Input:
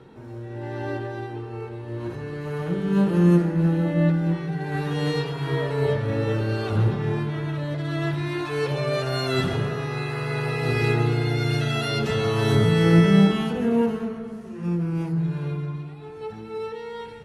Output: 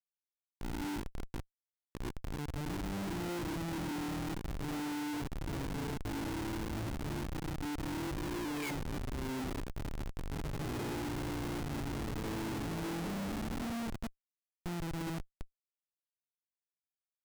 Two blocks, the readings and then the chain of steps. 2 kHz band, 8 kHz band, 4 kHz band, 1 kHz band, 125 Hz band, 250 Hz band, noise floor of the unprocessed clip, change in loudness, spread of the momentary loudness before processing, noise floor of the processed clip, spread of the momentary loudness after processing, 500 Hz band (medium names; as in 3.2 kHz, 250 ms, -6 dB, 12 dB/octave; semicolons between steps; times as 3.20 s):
-14.0 dB, -3.5 dB, -14.0 dB, -11.5 dB, -18.5 dB, -15.0 dB, -38 dBFS, -15.5 dB, 15 LU, under -85 dBFS, 7 LU, -19.0 dB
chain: painted sound fall, 7.69–9.10 s, 1.2–9 kHz -26 dBFS; vowel filter u; Schmitt trigger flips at -37 dBFS